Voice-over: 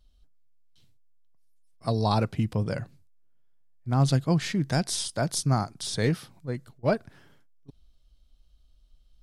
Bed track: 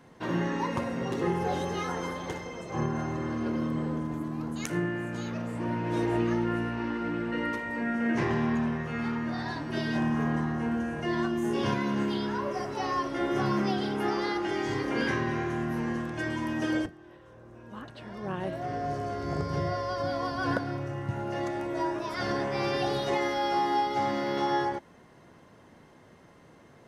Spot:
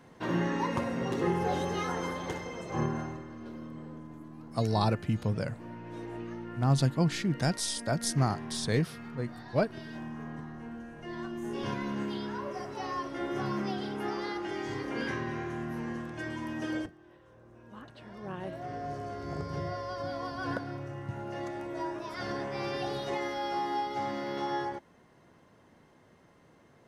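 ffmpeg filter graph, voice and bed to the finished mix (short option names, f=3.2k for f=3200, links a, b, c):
-filter_complex "[0:a]adelay=2700,volume=-3dB[a];[1:a]volume=7dB,afade=t=out:st=2.83:d=0.42:silence=0.237137,afade=t=in:st=10.94:d=0.88:silence=0.421697[b];[a][b]amix=inputs=2:normalize=0"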